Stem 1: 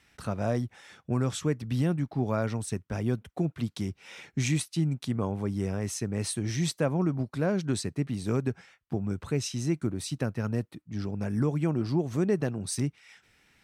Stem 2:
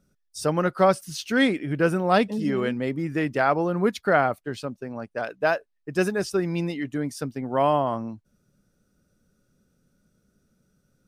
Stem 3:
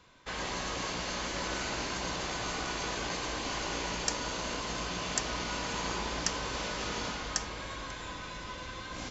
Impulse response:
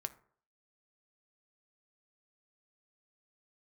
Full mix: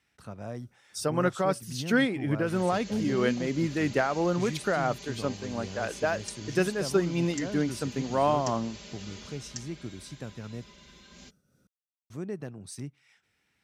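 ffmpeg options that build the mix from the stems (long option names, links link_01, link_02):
-filter_complex "[0:a]volume=-10.5dB,asplit=3[link_01][link_02][link_03];[link_01]atrim=end=10.72,asetpts=PTS-STARTPTS,afade=type=out:start_time=10.716:duration=0.004:curve=hsin[link_04];[link_02]atrim=start=10.72:end=12.1,asetpts=PTS-STARTPTS,volume=0[link_05];[link_03]atrim=start=12.1,asetpts=PTS-STARTPTS,afade=type=in:duration=0.004:curve=hsin[link_06];[link_04][link_05][link_06]concat=n=3:v=0:a=1,asplit=2[link_07][link_08];[link_08]volume=-20.5dB[link_09];[1:a]alimiter=limit=-14dB:level=0:latency=1:release=285,tremolo=f=3:d=0.46,adelay=600,volume=1dB[link_10];[2:a]equalizer=frequency=1000:width=0.86:gain=-13,aecho=1:1:5:0.94,adelay=2200,volume=-9.5dB[link_11];[3:a]atrim=start_sample=2205[link_12];[link_09][link_12]afir=irnorm=-1:irlink=0[link_13];[link_07][link_10][link_11][link_13]amix=inputs=4:normalize=0,highpass=56"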